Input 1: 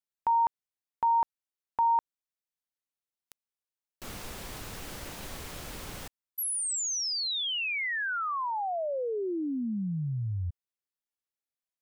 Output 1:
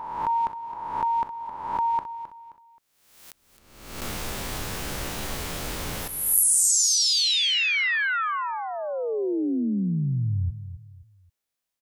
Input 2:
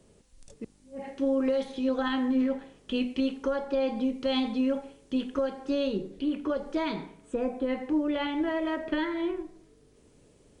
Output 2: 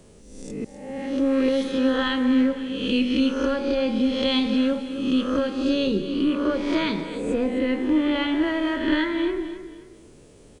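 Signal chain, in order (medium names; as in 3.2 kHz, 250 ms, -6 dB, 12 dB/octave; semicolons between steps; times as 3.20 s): reverse spectral sustain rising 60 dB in 0.91 s; dynamic bell 750 Hz, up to -8 dB, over -43 dBFS, Q 1.3; on a send: feedback delay 264 ms, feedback 33%, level -12 dB; on the sum: trim +6.5 dB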